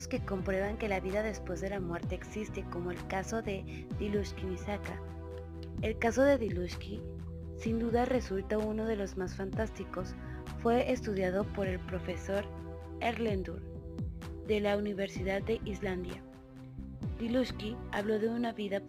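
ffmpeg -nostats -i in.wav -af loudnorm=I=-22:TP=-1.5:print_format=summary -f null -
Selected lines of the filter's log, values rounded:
Input Integrated:    -35.2 LUFS
Input True Peak:     -15.2 dBTP
Input LRA:             3.7 LU
Input Threshold:     -45.4 LUFS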